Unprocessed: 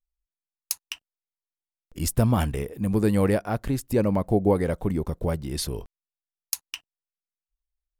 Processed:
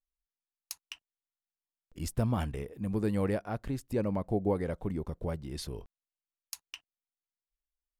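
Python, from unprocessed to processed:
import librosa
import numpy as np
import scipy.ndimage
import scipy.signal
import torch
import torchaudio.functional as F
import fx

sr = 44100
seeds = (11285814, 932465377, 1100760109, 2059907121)

y = fx.high_shelf(x, sr, hz=8800.0, db=-10.0)
y = y * librosa.db_to_amplitude(-8.5)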